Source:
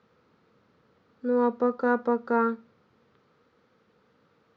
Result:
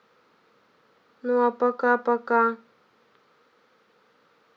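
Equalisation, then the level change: HPF 670 Hz 6 dB/oct; +7.0 dB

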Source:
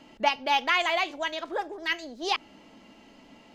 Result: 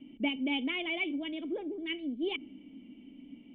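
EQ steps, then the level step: air absorption 62 m; dynamic EQ 410 Hz, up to +6 dB, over -43 dBFS, Q 0.88; vocal tract filter i; +8.0 dB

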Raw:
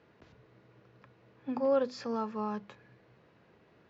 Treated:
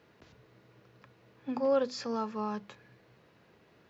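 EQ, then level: high shelf 4000 Hz +9.5 dB; 0.0 dB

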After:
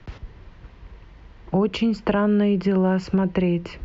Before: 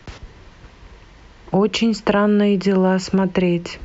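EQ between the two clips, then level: Bessel low-pass 3500 Hz, order 2; low shelf 150 Hz +7.5 dB; -5.5 dB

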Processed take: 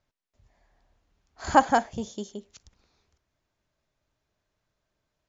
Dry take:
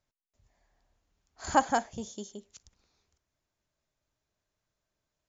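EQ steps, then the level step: air absorption 86 m; +6.0 dB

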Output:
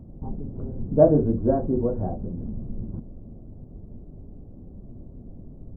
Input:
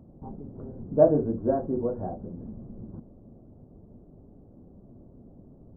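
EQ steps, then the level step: low shelf 71 Hz +11.5 dB; low shelf 450 Hz +5.5 dB; 0.0 dB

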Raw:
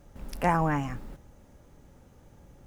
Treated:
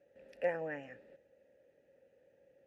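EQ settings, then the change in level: vowel filter e; HPF 54 Hz; bell 3200 Hz -2.5 dB 0.3 oct; +1.5 dB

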